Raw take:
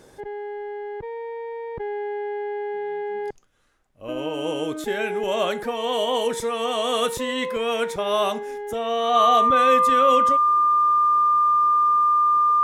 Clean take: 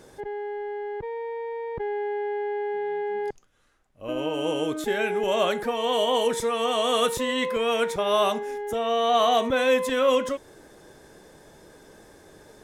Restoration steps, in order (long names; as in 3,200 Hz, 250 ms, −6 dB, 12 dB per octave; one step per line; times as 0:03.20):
notch filter 1,200 Hz, Q 30